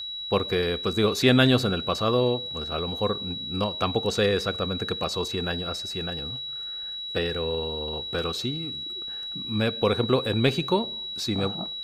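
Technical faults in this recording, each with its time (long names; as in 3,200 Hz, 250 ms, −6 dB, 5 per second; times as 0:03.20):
whistle 3,900 Hz −32 dBFS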